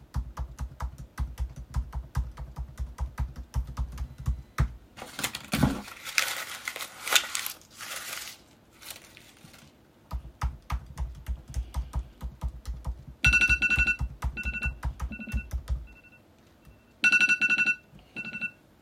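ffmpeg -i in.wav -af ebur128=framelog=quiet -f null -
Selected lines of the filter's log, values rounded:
Integrated loudness:
  I:         -29.0 LUFS
  Threshold: -40.0 LUFS
Loudness range:
  LRA:        12.8 LU
  Threshold: -50.3 LUFS
  LRA low:   -39.3 LUFS
  LRA high:  -26.5 LUFS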